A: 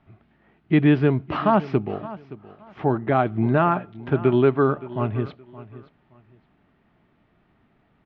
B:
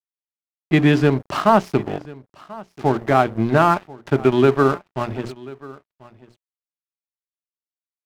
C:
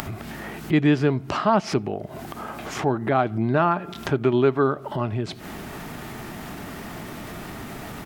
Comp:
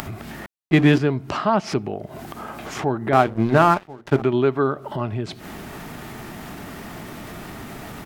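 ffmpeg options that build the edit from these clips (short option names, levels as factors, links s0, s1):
-filter_complex "[1:a]asplit=2[s0][s1];[2:a]asplit=3[s2][s3][s4];[s2]atrim=end=0.462[s5];[s0]atrim=start=0.458:end=0.982[s6];[s3]atrim=start=0.978:end=3.132[s7];[s1]atrim=start=3.128:end=4.222[s8];[s4]atrim=start=4.218[s9];[s5][s6]acrossfade=d=0.004:c1=hsin:c2=hsin[s10];[s10][s7]acrossfade=d=0.004:c1=hsin:c2=hsin[s11];[s11][s8]acrossfade=d=0.004:c1=hsin:c2=hsin[s12];[s12][s9]acrossfade=d=0.004:c1=hsin:c2=hsin"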